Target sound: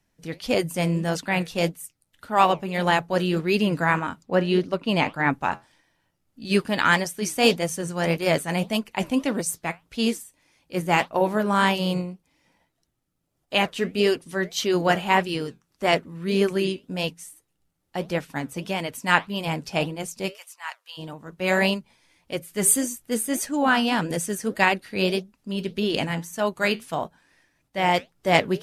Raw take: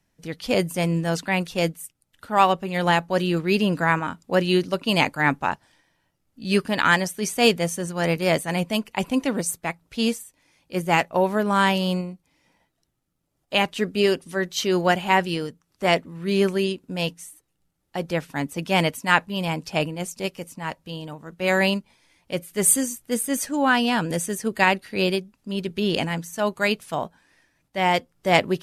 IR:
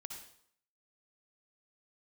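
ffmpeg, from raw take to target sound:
-filter_complex "[0:a]asettb=1/sr,asplit=3[a][b][c];[a]atrim=end=4.234[d];[b]atrim=start=4.23:end=5.33,asetpts=PTS-STARTPTS,afade=t=in:d=0.004:c=qsin,afade=t=out:st=1.096:d=0.004:c=qsin,highshelf=f=4k:g=-11.5[e];[c]atrim=start=5.326[f];[d][e]acrossfade=d=0.004:c1=hsin:c2=qsin[g];[g][f]acrossfade=d=0.004:c1=qsin:c2=hsin,asettb=1/sr,asplit=3[h][i][j];[h]atrim=end=18.374[k];[i]atrim=start=18.37:end=18.92,asetpts=PTS-STARTPTS,afade=t=in:d=0.004:c=qsin,afade=t=out:st=0.546:d=0.004:c=qsin,acompressor=threshold=-25dB:ratio=3[l];[j]atrim=start=18.916[m];[k][l]acrossfade=d=0.004:c1=hsin:c2=qsin[n];[n][m]acrossfade=d=0.004:c1=qsin:c2=hsin,asplit=3[o][p][q];[o]afade=t=out:st=20.31:d=0.02[r];[p]highpass=f=980:w=0.5412,highpass=f=980:w=1.3066,afade=t=in:st=20.31:d=0.02,afade=t=out:st=20.97:d=0.02[s];[q]afade=t=in:st=20.97:d=0.02[t];[r][s][t]amix=inputs=3:normalize=0,flanger=delay=2.6:depth=9:regen=-71:speed=1.7:shape=sinusoidal,volume=3.5dB"

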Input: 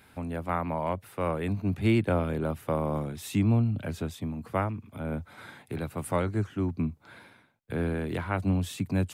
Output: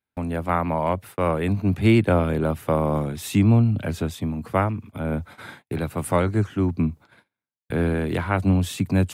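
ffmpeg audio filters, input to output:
-af "agate=range=-38dB:threshold=-47dB:ratio=16:detection=peak,volume=7dB"

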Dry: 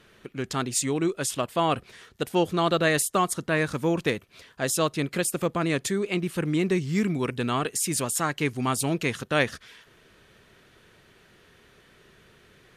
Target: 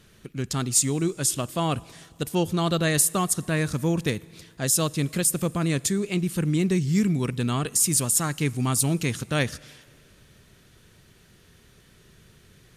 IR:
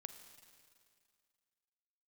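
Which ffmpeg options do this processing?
-filter_complex "[0:a]bass=f=250:g=11,treble=f=4k:g=11,asplit=2[a][b];[1:a]atrim=start_sample=2205[c];[b][c]afir=irnorm=-1:irlink=0,volume=-6dB[d];[a][d]amix=inputs=2:normalize=0,volume=-6dB"

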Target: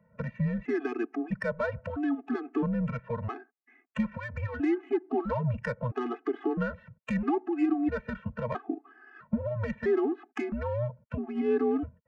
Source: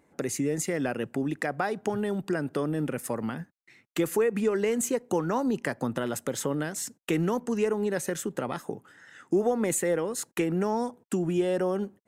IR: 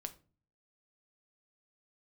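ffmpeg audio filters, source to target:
-filter_complex "[0:a]acrossover=split=320|840|2000[a][b][c][d];[a]asoftclip=type=tanh:threshold=-31.5dB[e];[e][b][c][d]amix=inputs=4:normalize=0,highpass=f=240:t=q:w=0.5412,highpass=f=240:t=q:w=1.307,lowpass=f=2.8k:t=q:w=0.5176,lowpass=f=2.8k:t=q:w=0.7071,lowpass=f=2.8k:t=q:w=1.932,afreqshift=-120,adynamicsmooth=sensitivity=3:basefreq=2.1k,alimiter=limit=-22dB:level=0:latency=1:release=142,afftfilt=real='re*gt(sin(2*PI*0.76*pts/sr)*(1-2*mod(floor(b*sr/1024/220),2)),0)':imag='im*gt(sin(2*PI*0.76*pts/sr)*(1-2*mod(floor(b*sr/1024/220),2)),0)':win_size=1024:overlap=0.75,volume=5dB"

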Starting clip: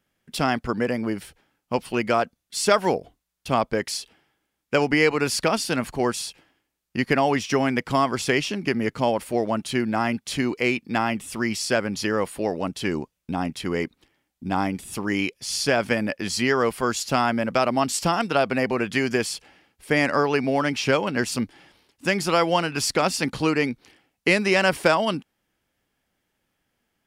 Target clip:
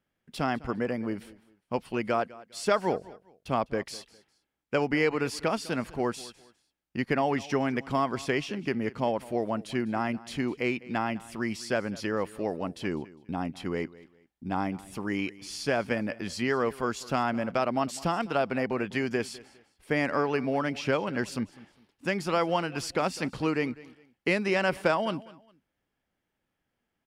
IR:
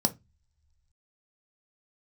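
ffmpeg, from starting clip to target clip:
-filter_complex "[0:a]highshelf=f=3.5k:g=-8.5,asplit=2[a][b];[b]aecho=0:1:203|406:0.1|0.028[c];[a][c]amix=inputs=2:normalize=0,volume=-5.5dB"

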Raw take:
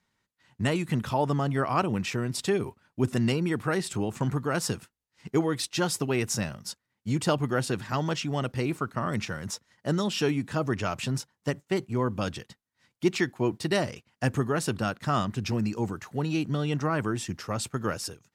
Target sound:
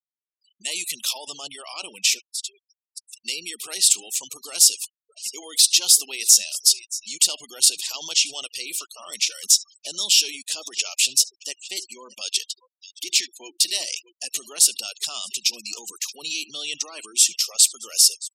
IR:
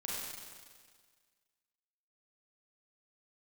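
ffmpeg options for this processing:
-filter_complex "[0:a]asplit=2[a][b];[b]aecho=0:1:622:0.0841[c];[a][c]amix=inputs=2:normalize=0,asoftclip=type=tanh:threshold=-13.5dB,alimiter=level_in=2dB:limit=-24dB:level=0:latency=1:release=45,volume=-2dB,equalizer=f=1.8k:t=o:w=2.2:g=-3,asplit=3[d][e][f];[d]afade=t=out:st=2.18:d=0.02[g];[e]acompressor=threshold=-47dB:ratio=20,afade=t=in:st=2.18:d=0.02,afade=t=out:st=3.24:d=0.02[h];[f]afade=t=in:st=3.24:d=0.02[i];[g][h][i]amix=inputs=3:normalize=0,asplit=2[j][k];[k]adelay=72,lowpass=f=3.2k:p=1,volume=-16.5dB,asplit=2[l][m];[m]adelay=72,lowpass=f=3.2k:p=1,volume=0.29,asplit=2[n][o];[o]adelay=72,lowpass=f=3.2k:p=1,volume=0.29[p];[l][n][p]amix=inputs=3:normalize=0[q];[j][q]amix=inputs=2:normalize=0,aexciter=amount=12.4:drive=6.2:freq=2.5k,highpass=550,afftfilt=real='re*gte(hypot(re,im),0.0158)':imag='im*gte(hypot(re,im),0.0158)':win_size=1024:overlap=0.75,volume=-1.5dB"

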